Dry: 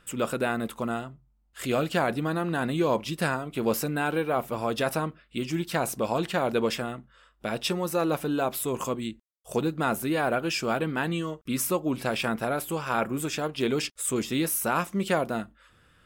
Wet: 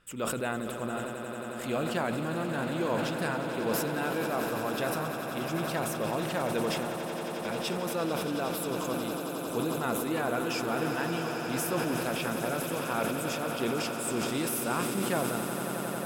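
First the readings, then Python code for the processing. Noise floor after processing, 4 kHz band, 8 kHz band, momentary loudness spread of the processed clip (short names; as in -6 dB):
-37 dBFS, -2.5 dB, -2.5 dB, 4 LU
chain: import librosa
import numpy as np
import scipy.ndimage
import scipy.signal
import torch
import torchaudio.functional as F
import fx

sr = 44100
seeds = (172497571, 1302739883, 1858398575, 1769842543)

y = fx.echo_swell(x, sr, ms=90, loudest=8, wet_db=-12.0)
y = fx.sustainer(y, sr, db_per_s=27.0)
y = y * 10.0 ** (-6.5 / 20.0)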